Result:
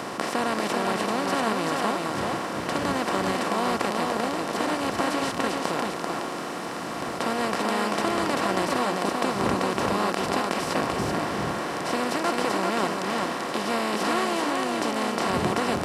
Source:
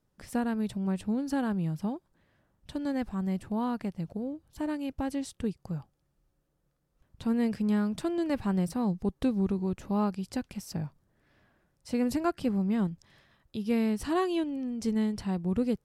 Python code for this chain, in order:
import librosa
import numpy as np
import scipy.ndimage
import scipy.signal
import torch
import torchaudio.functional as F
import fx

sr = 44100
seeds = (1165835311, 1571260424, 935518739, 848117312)

p1 = fx.bin_compress(x, sr, power=0.2)
p2 = fx.dmg_wind(p1, sr, seeds[0], corner_hz=140.0, level_db=-25.0)
p3 = fx.weighting(p2, sr, curve='A')
y = p3 + fx.echo_single(p3, sr, ms=389, db=-3.0, dry=0)